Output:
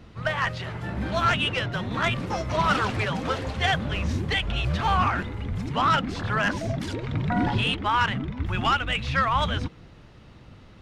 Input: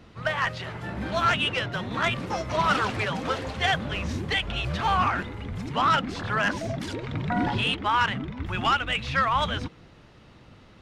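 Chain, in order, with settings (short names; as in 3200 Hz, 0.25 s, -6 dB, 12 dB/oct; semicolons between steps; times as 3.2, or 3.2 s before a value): low shelf 150 Hz +6.5 dB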